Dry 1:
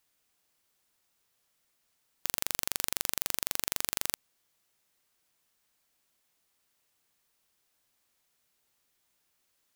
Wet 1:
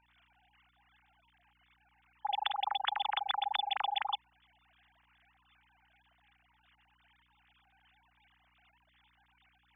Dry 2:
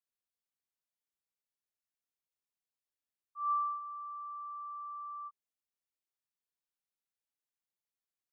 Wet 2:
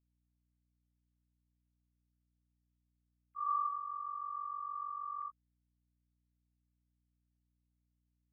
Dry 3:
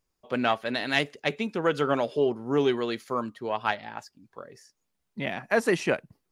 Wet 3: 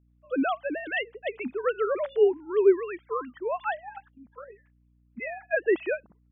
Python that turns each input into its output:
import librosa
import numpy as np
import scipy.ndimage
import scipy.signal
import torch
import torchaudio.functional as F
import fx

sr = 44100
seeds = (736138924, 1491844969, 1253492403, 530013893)

y = fx.sine_speech(x, sr)
y = fx.harmonic_tremolo(y, sr, hz=2.6, depth_pct=50, crossover_hz=1100.0)
y = fx.add_hum(y, sr, base_hz=60, snr_db=35)
y = F.gain(torch.from_numpy(y), 2.0).numpy()